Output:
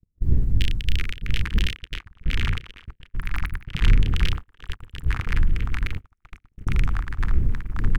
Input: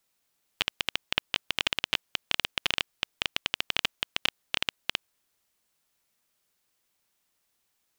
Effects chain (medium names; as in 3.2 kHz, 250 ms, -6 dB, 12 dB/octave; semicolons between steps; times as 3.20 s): wind noise 81 Hz -31 dBFS; doubling 32 ms -10.5 dB; feedback echo behind a band-pass 672 ms, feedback 61%, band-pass 650 Hz, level -9 dB; 3.18–3.68 s: spectral selection erased 200–9500 Hz; peak limiter -14 dBFS, peak gain reduction 11.5 dB; Chebyshev band-stop 470–1700 Hz, order 3; bass shelf 67 Hz +7 dB; waveshaping leveller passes 1; ever faster or slower copies 185 ms, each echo -5 st, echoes 3; gate -24 dBFS, range -45 dB; 1.78–4.08 s: treble shelf 5 kHz -5 dB; trim +2 dB